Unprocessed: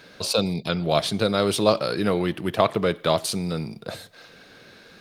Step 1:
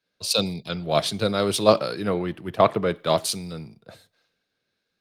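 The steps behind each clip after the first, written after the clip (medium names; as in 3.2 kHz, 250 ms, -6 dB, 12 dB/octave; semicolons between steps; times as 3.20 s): three bands expanded up and down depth 100%; trim -1.5 dB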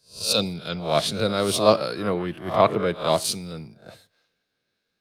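reverse spectral sustain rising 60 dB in 0.35 s; trim -1 dB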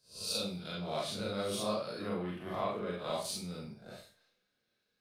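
compression 2:1, threshold -37 dBFS, peak gain reduction 14 dB; Schroeder reverb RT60 0.35 s, combs from 30 ms, DRR -3 dB; trim -8.5 dB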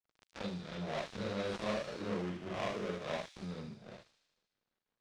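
dead-time distortion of 0.29 ms; distance through air 120 m; feedback echo behind a high-pass 76 ms, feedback 68%, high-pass 4.8 kHz, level -4 dB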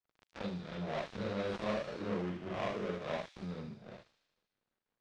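low-pass 3.2 kHz 6 dB/octave; trim +1 dB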